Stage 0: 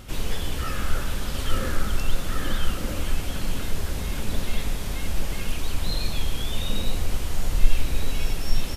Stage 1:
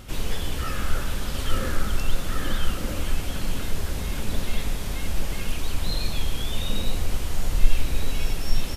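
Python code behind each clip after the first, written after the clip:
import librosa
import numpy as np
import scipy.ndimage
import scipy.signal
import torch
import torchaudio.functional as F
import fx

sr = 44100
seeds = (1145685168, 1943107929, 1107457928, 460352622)

y = x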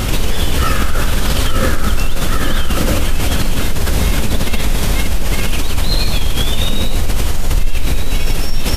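y = fx.env_flatten(x, sr, amount_pct=70)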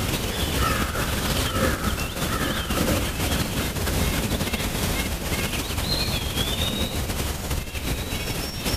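y = scipy.signal.sosfilt(scipy.signal.butter(2, 75.0, 'highpass', fs=sr, output='sos'), x)
y = F.gain(torch.from_numpy(y), -5.0).numpy()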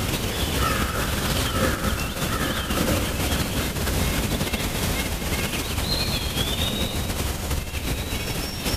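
y = x + 10.0 ** (-10.5 / 20.0) * np.pad(x, (int(227 * sr / 1000.0), 0))[:len(x)]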